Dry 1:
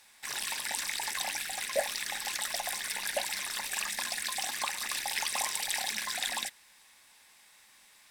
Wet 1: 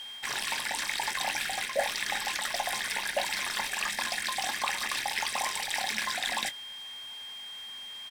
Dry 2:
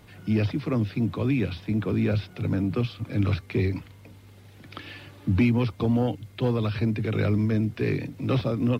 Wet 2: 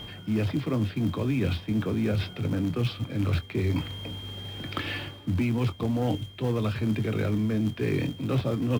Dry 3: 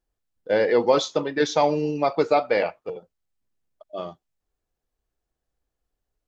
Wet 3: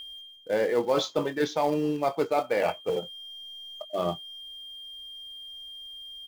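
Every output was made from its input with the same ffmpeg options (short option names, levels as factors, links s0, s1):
-filter_complex "[0:a]aeval=exprs='val(0)+0.00501*sin(2*PI*3200*n/s)':c=same,areverse,acompressor=threshold=0.0158:ratio=4,areverse,highshelf=f=5500:g=-10.5,asplit=2[s0][s1];[s1]acrusher=bits=2:mode=log:mix=0:aa=0.000001,volume=0.299[s2];[s0][s2]amix=inputs=2:normalize=0,asplit=2[s3][s4];[s4]adelay=23,volume=0.237[s5];[s3][s5]amix=inputs=2:normalize=0,volume=2.51"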